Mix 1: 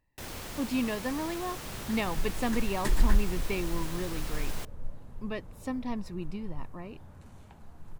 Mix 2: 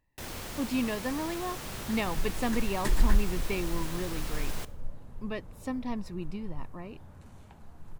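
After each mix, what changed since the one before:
reverb: on, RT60 0.70 s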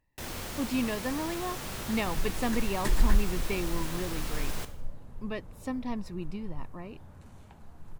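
first sound: send +8.5 dB

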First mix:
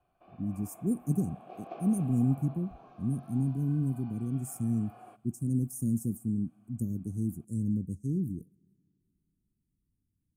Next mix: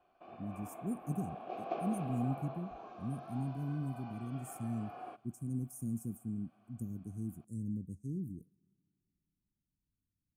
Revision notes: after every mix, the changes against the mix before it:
speech -8.5 dB; background +5.0 dB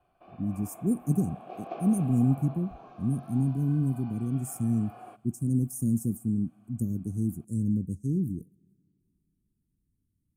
speech +11.5 dB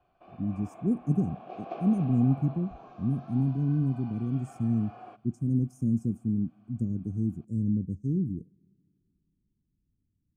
speech: add distance through air 160 m

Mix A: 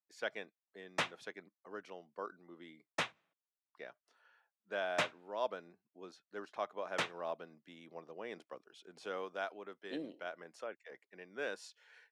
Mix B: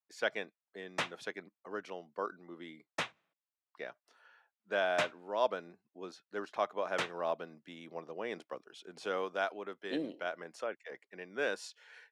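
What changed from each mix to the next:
speech +6.0 dB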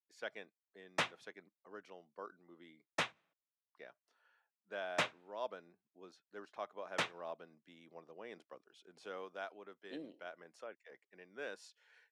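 speech -11.0 dB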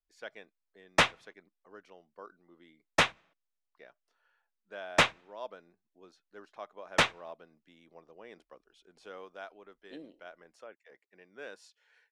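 background +11.5 dB; master: remove high-pass 110 Hz 24 dB/octave

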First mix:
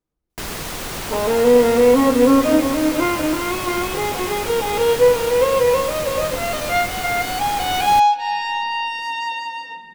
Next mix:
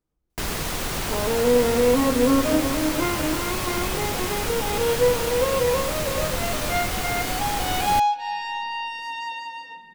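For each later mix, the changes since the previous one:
second sound -6.5 dB; master: add bass shelf 130 Hz +4 dB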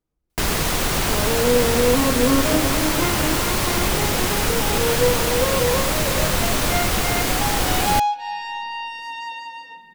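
first sound +6.5 dB

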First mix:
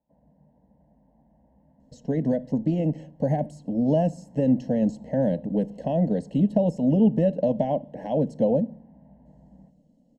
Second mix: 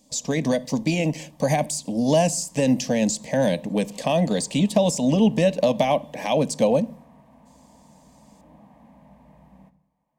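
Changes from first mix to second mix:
speech: entry -1.80 s; master: remove boxcar filter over 37 samples

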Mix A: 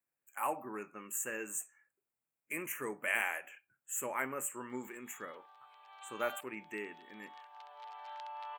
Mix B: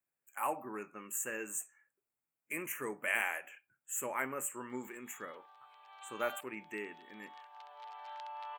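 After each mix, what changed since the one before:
no change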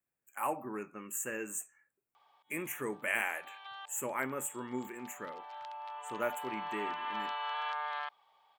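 background: entry -2.55 s; master: add bass shelf 330 Hz +7 dB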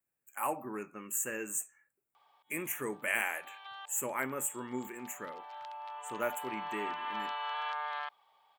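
speech: add treble shelf 4.8 kHz +5 dB

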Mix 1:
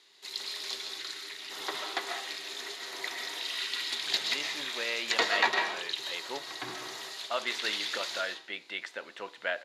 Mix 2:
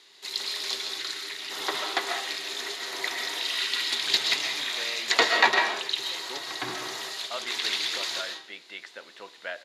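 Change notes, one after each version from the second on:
speech -3.5 dB; background +6.0 dB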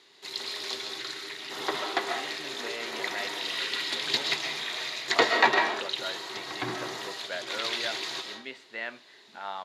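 speech: entry -2.15 s; master: add tilt EQ -2 dB/octave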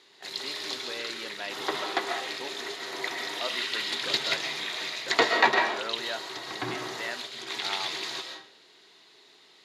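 speech: entry -1.75 s

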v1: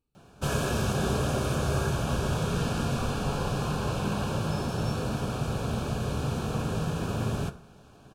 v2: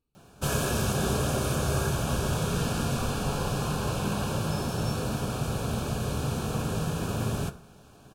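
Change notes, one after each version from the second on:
background: add treble shelf 7.9 kHz +10 dB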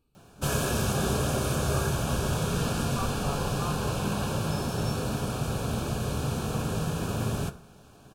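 speech +9.5 dB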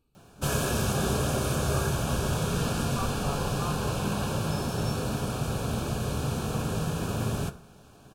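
no change

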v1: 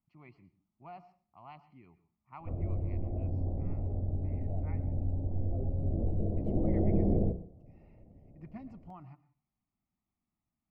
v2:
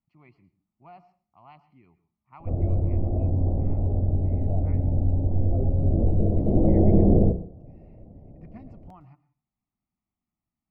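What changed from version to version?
background +10.0 dB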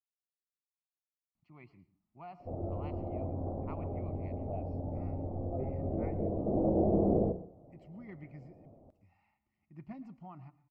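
speech: entry +1.35 s; background: add tilt EQ +4.5 dB/octave

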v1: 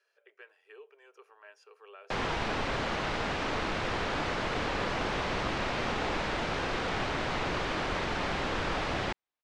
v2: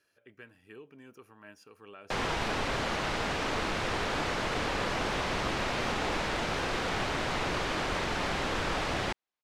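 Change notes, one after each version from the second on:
speech: remove elliptic high-pass 410 Hz, stop band 40 dB; master: remove distance through air 66 m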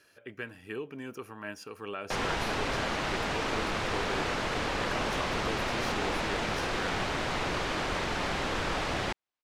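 speech +11.5 dB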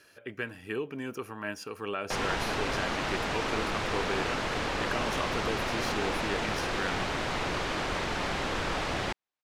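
speech +4.0 dB

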